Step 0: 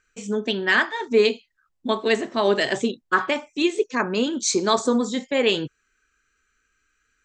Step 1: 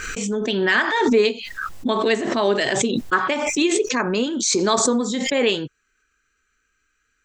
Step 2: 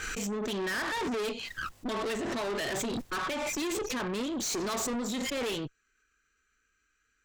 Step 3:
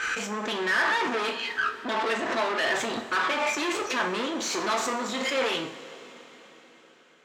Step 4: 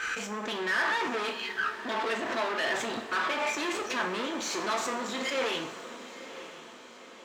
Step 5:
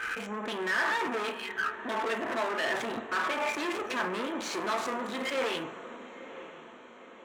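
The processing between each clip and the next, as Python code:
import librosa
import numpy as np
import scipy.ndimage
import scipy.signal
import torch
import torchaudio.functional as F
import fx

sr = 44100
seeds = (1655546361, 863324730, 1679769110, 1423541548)

y1 = fx.pre_swell(x, sr, db_per_s=30.0)
y2 = fx.tube_stage(y1, sr, drive_db=28.0, bias=0.55)
y2 = y2 * 10.0 ** (-2.5 / 20.0)
y3 = fx.bandpass_q(y2, sr, hz=1400.0, q=0.57)
y3 = fx.rev_double_slope(y3, sr, seeds[0], early_s=0.39, late_s=4.8, knee_db=-18, drr_db=3.5)
y3 = y3 * 10.0 ** (8.5 / 20.0)
y4 = np.sign(y3) * np.maximum(np.abs(y3) - 10.0 ** (-56.5 / 20.0), 0.0)
y4 = fx.echo_diffused(y4, sr, ms=955, feedback_pct=54, wet_db=-14.0)
y4 = y4 * 10.0 ** (-3.5 / 20.0)
y5 = fx.wiener(y4, sr, points=9)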